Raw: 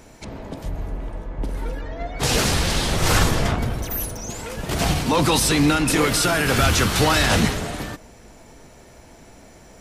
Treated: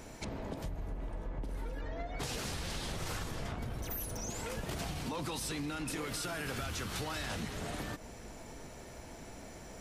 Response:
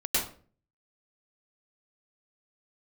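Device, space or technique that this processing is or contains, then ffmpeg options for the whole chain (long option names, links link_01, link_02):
serial compression, peaks first: -af "acompressor=threshold=-29dB:ratio=6,acompressor=threshold=-36dB:ratio=2,volume=-2.5dB"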